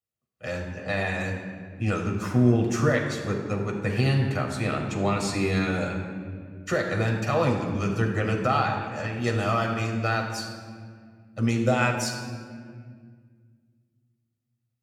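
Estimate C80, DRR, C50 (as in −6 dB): 6.0 dB, 0.0 dB, 4.5 dB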